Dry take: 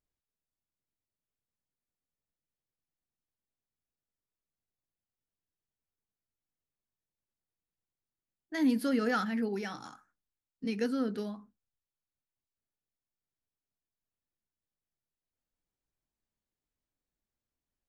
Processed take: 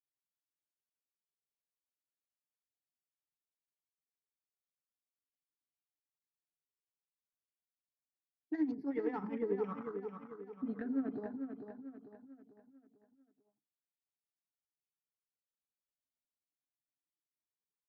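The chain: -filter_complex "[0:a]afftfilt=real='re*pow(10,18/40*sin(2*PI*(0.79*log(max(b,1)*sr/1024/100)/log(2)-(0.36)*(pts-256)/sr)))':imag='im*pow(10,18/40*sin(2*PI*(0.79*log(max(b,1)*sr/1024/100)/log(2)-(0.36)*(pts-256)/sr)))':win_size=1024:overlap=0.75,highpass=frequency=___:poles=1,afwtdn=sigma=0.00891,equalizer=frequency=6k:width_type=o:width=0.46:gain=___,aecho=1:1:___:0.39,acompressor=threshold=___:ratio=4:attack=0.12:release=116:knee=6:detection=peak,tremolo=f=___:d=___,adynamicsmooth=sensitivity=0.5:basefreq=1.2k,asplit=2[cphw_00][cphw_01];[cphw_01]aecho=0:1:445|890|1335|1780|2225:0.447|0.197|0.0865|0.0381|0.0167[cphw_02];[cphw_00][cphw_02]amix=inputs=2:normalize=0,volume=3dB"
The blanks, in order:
200, 6.5, 6.9, -31dB, 11, 0.7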